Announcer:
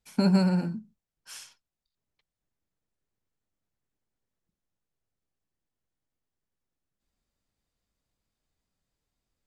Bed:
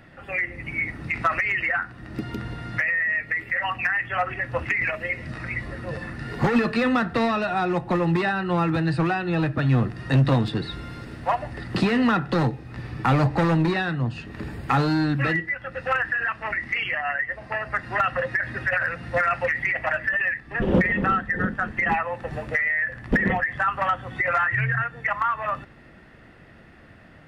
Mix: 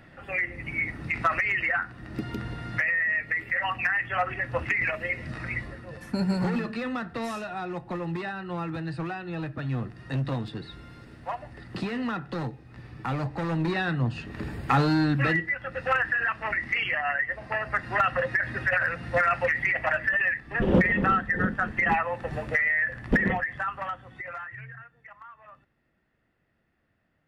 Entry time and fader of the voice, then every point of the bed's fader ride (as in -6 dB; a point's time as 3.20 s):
5.95 s, -4.5 dB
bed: 5.57 s -2 dB
5.86 s -10 dB
13.39 s -10 dB
13.90 s -1 dB
23.11 s -1 dB
25.03 s -23.5 dB